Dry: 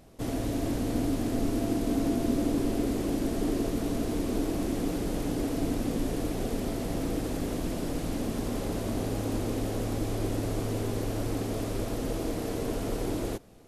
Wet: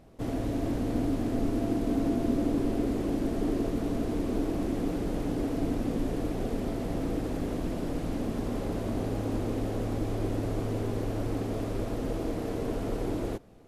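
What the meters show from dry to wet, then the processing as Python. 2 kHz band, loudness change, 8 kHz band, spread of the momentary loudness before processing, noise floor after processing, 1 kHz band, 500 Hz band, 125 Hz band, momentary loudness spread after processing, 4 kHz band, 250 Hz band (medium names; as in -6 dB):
-2.5 dB, -0.5 dB, -8.5 dB, 4 LU, -34 dBFS, -0.5 dB, 0.0 dB, 0.0 dB, 5 LU, -5.5 dB, 0.0 dB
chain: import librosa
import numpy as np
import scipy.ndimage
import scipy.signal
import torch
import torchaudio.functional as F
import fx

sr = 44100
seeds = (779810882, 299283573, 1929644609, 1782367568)

y = fx.high_shelf(x, sr, hz=3500.0, db=-10.0)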